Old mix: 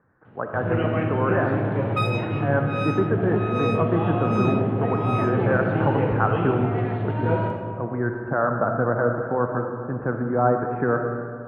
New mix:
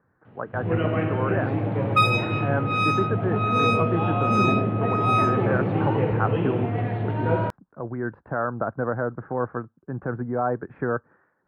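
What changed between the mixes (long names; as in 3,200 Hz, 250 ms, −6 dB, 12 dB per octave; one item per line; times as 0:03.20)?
speech: send off
second sound +7.5 dB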